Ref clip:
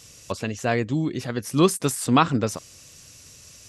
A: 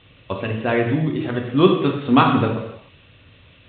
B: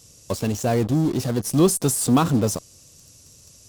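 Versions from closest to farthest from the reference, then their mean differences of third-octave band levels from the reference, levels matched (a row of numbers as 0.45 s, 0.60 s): B, A; 5.5 dB, 9.5 dB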